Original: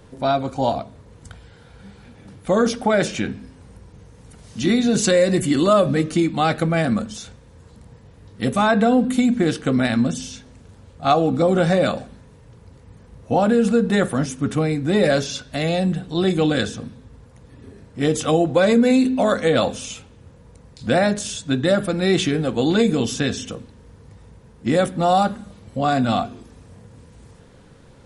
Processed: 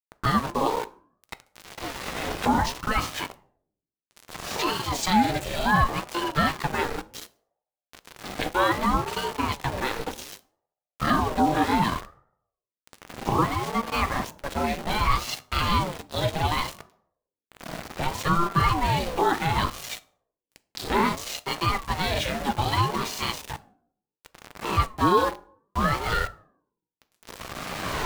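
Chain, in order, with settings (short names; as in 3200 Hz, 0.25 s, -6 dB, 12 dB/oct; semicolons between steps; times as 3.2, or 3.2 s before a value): octaver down 2 oct, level -2 dB; recorder AGC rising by 16 dB/s; three-band isolator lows -18 dB, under 380 Hz, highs -21 dB, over 6300 Hz; notches 60/120/180/240/300/360/420 Hz; in parallel at +3 dB: limiter -13.5 dBFS, peak gain reduction 9 dB; on the sum: grains 0.146 s, grains 18/s, spray 31 ms, pitch spread up and down by 0 st; hum 60 Hz, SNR 21 dB; sample gate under -24.5 dBFS; on a send at -13.5 dB: reverb RT60 0.55 s, pre-delay 5 ms; on the sum: ring modulator with a swept carrier 460 Hz, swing 50%, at 0.65 Hz; gain -4 dB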